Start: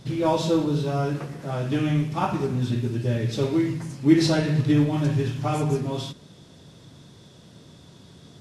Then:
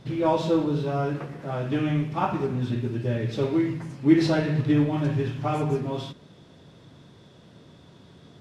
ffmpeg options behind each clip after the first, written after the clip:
-af "bass=f=250:g=-3,treble=f=4k:g=-11"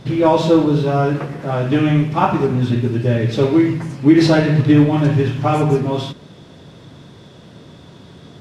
-af "alimiter=level_in=11dB:limit=-1dB:release=50:level=0:latency=1,volume=-1dB"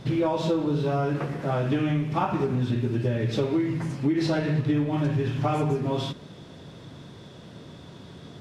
-af "acompressor=threshold=-18dB:ratio=6,volume=-3.5dB"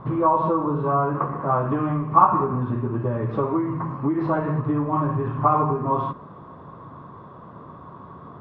-af "lowpass=f=1.1k:t=q:w=11"

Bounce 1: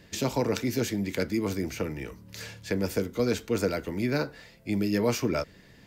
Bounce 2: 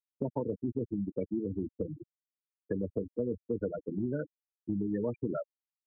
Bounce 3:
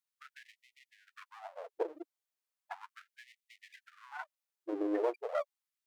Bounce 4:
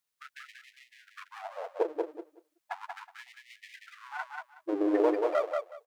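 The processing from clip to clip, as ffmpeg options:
-af "afftfilt=real='re*gte(hypot(re,im),0.126)':imag='im*gte(hypot(re,im),0.126)':win_size=1024:overlap=0.75,acompressor=threshold=-33dB:ratio=3,volume=1.5dB"
-af "aeval=exprs='if(lt(val(0),0),0.251*val(0),val(0))':c=same,afftfilt=real='re*gte(b*sr/1024,290*pow(1900/290,0.5+0.5*sin(2*PI*0.36*pts/sr)))':imag='im*gte(b*sr/1024,290*pow(1900/290,0.5+0.5*sin(2*PI*0.36*pts/sr)))':win_size=1024:overlap=0.75,volume=6.5dB"
-af "aecho=1:1:185|370|555:0.631|0.114|0.0204,volume=6dB"

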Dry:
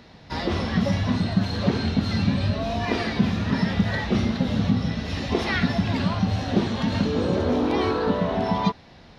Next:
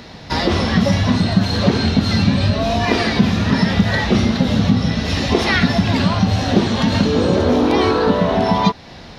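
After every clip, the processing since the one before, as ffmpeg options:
-filter_complex "[0:a]bass=f=250:g=-1,treble=f=4k:g=4,asplit=2[a][b];[b]acompressor=threshold=-29dB:ratio=6,volume=1dB[c];[a][c]amix=inputs=2:normalize=0,volume=5dB"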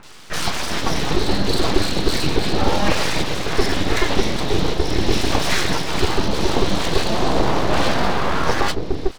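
-filter_complex "[0:a]acrossover=split=290|1500[a][b][c];[c]adelay=30[d];[a]adelay=390[e];[e][b][d]amix=inputs=3:normalize=0,aeval=exprs='abs(val(0))':c=same,volume=1dB"

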